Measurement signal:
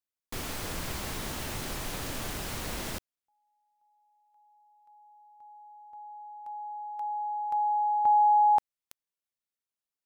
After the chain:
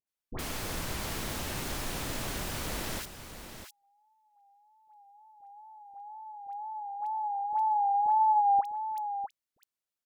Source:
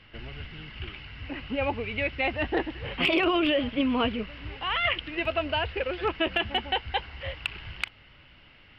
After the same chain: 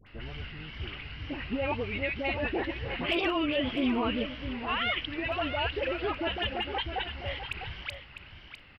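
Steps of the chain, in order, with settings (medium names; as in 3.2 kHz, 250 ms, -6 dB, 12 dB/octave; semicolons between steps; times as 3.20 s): wow and flutter 76 cents; peak limiter -21 dBFS; phase dispersion highs, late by 70 ms, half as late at 1.2 kHz; on a send: delay 652 ms -10 dB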